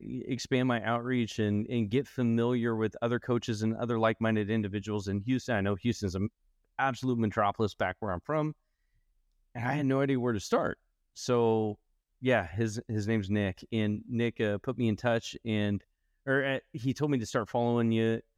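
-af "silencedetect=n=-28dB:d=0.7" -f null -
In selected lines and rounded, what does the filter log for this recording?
silence_start: 8.49
silence_end: 9.58 | silence_duration: 1.09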